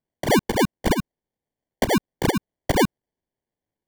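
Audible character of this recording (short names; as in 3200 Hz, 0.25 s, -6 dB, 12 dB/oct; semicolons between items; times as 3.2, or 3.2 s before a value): phasing stages 8, 0.77 Hz, lowest notch 470–3300 Hz; aliases and images of a low sample rate 1300 Hz, jitter 0%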